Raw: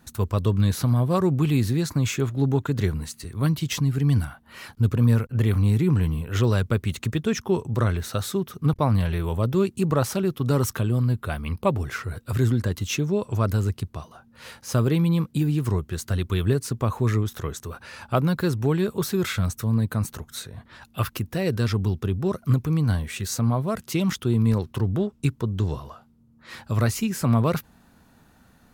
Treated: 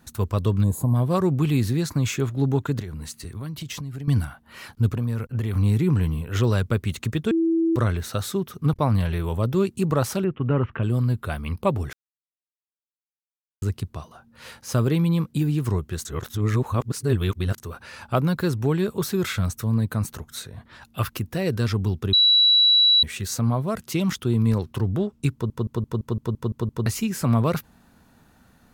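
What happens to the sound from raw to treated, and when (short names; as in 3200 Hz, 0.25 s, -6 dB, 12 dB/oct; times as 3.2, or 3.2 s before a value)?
0.63–0.95 spectral gain 1100–6500 Hz -20 dB
2.79–4.08 compressor 10:1, threshold -29 dBFS
4.89–5.55 compressor, threshold -21 dBFS
7.31–7.76 bleep 329 Hz -17.5 dBFS
10.24–10.83 Chebyshev low-pass 2900 Hz, order 5
11.93–13.62 mute
16.05–17.58 reverse
22.13–23.03 bleep 3920 Hz -13 dBFS
25.33 stutter in place 0.17 s, 9 plays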